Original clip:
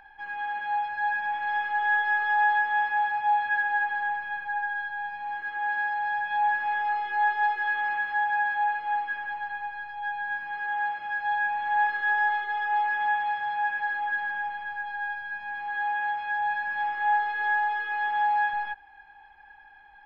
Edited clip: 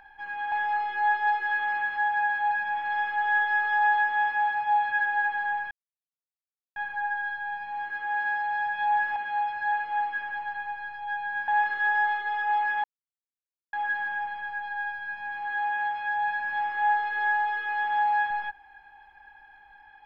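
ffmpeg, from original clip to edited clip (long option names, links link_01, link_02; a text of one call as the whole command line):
ffmpeg -i in.wav -filter_complex "[0:a]asplit=9[link_01][link_02][link_03][link_04][link_05][link_06][link_07][link_08][link_09];[link_01]atrim=end=0.522[link_10];[link_02]atrim=start=6.678:end=8.672[link_11];[link_03]atrim=start=1.078:end=4.28,asetpts=PTS-STARTPTS,afade=type=out:start_time=3.198:duration=0.004:curve=hsin,apad=pad_dur=1.05[link_12];[link_04]atrim=start=4.28:end=6.682,asetpts=PTS-STARTPTS,afade=type=in:duration=0.004:curve=hsin[link_13];[link_05]atrim=start=0.518:end=1.082[link_14];[link_06]atrim=start=8.668:end=10.432[link_15];[link_07]atrim=start=11.708:end=13.07,asetpts=PTS-STARTPTS,afade=type=out:start_time=1.358:duration=0.004:curve=hsin[link_16];[link_08]atrim=start=13.07:end=13.96,asetpts=PTS-STARTPTS,volume=0[link_17];[link_09]atrim=start=13.96,asetpts=PTS-STARTPTS,afade=type=in:duration=0.004:curve=hsin[link_18];[link_10][link_11]acrossfade=duration=0.004:curve1=hsin:curve2=hsin[link_19];[link_12][link_13]concat=n=2:v=0:a=1[link_20];[link_19][link_20]acrossfade=duration=0.004:curve1=hsin:curve2=hsin[link_21];[link_21][link_14]acrossfade=duration=0.004:curve1=hsin:curve2=hsin[link_22];[link_22][link_15]acrossfade=duration=0.004:curve1=hsin:curve2=hsin[link_23];[link_16][link_17][link_18]concat=n=3:v=0:a=1[link_24];[link_23][link_24]acrossfade=duration=0.004:curve1=hsin:curve2=hsin" out.wav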